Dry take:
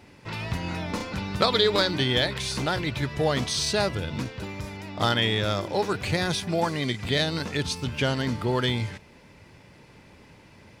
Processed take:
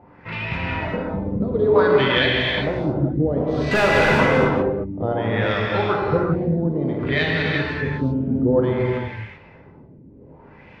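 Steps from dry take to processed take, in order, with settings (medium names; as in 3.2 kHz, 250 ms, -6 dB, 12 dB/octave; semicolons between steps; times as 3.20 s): LFO low-pass sine 0.58 Hz 240–2600 Hz; 3.71–4.45 s: overdrive pedal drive 29 dB, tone 1.2 kHz, clips at -9 dBFS; gated-style reverb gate 420 ms flat, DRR -2.5 dB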